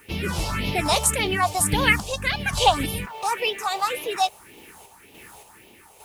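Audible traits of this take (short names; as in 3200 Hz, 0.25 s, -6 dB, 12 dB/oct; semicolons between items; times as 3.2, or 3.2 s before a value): phasing stages 4, 1.8 Hz, lowest notch 260–1500 Hz; a quantiser's noise floor 10-bit, dither triangular; random-step tremolo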